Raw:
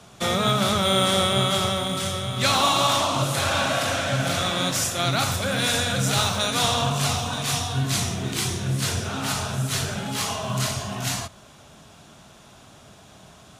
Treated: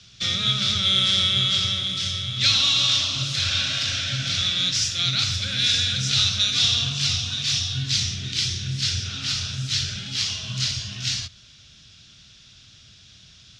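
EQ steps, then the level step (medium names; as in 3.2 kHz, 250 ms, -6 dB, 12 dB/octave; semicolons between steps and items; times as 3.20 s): FFT filter 110 Hz 0 dB, 160 Hz -7 dB, 930 Hz -24 dB, 1.4 kHz -8 dB, 3.5 kHz +6 dB, 5.3 kHz +8 dB, 11 kHz -23 dB; 0.0 dB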